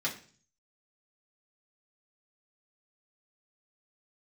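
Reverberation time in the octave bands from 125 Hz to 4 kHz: 0.75, 0.55, 0.45, 0.40, 0.45, 0.50 seconds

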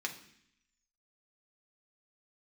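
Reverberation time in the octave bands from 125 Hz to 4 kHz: 0.85, 0.90, 0.65, 0.65, 0.85, 0.85 seconds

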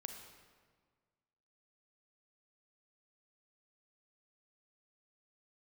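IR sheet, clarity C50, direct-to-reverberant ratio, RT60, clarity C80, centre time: 5.0 dB, 4.5 dB, 1.6 s, 6.5 dB, 40 ms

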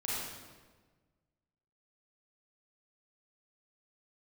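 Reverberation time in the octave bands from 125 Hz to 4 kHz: 1.9, 1.6, 1.5, 1.3, 1.2, 1.0 seconds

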